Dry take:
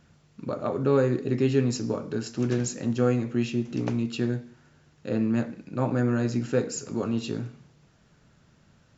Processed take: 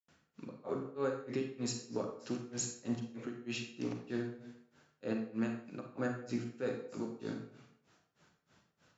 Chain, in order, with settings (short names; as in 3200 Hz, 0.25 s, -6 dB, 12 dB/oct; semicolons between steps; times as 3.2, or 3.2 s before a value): HPF 390 Hz 6 dB/oct; limiter -23.5 dBFS, peak gain reduction 8.5 dB; grains 0.218 s, grains 3.2/s, pitch spread up and down by 0 st; reverb RT60 0.50 s, pre-delay 35 ms, DRR 4 dB; gain -1.5 dB